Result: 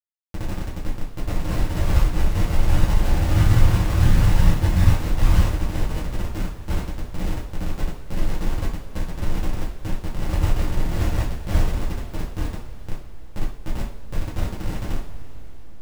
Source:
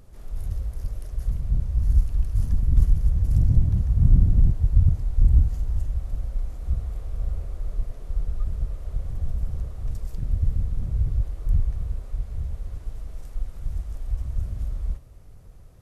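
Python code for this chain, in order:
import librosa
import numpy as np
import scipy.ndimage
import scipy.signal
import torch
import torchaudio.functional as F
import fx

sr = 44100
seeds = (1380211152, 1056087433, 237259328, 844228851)

y = fx.delta_hold(x, sr, step_db=-21.0)
y = np.clip(y, -10.0 ** (-12.0 / 20.0), 10.0 ** (-12.0 / 20.0))
y = fx.rev_double_slope(y, sr, seeds[0], early_s=0.4, late_s=4.9, knee_db=-20, drr_db=-6.5)
y = y * librosa.db_to_amplitude(-3.5)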